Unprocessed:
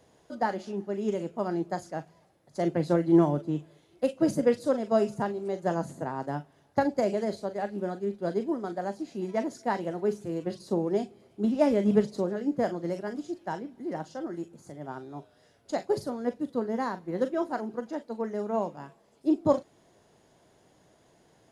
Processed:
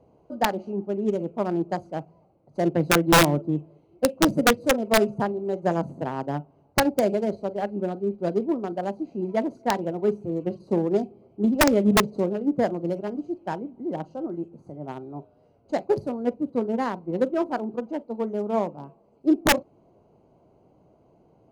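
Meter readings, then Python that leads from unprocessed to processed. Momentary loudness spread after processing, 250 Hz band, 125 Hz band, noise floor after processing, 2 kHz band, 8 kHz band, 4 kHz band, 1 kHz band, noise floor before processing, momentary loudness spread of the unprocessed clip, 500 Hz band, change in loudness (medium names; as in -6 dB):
13 LU, +4.0 dB, +4.5 dB, -60 dBFS, +12.5 dB, +16.5 dB, +16.5 dB, +6.0 dB, -63 dBFS, 12 LU, +3.5 dB, +4.5 dB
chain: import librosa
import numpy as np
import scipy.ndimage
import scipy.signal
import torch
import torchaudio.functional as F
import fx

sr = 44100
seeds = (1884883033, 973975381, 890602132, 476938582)

y = fx.wiener(x, sr, points=25)
y = (np.mod(10.0 ** (15.0 / 20.0) * y + 1.0, 2.0) - 1.0) / 10.0 ** (15.0 / 20.0)
y = F.gain(torch.from_numpy(y), 5.0).numpy()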